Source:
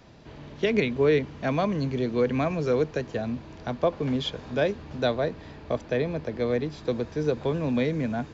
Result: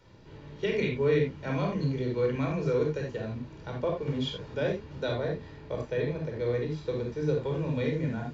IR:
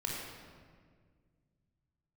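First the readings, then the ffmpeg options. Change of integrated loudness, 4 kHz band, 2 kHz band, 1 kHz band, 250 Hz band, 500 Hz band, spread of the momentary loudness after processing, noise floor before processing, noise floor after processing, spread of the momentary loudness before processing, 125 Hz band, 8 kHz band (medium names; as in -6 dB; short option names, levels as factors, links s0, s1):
-3.5 dB, -4.5 dB, -4.5 dB, -6.5 dB, -5.0 dB, -3.5 dB, 9 LU, -45 dBFS, -48 dBFS, 8 LU, 0.0 dB, no reading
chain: -filter_complex "[1:a]atrim=start_sample=2205,afade=t=out:st=0.14:d=0.01,atrim=end_sample=6615[s0];[0:a][s0]afir=irnorm=-1:irlink=0,volume=0.501"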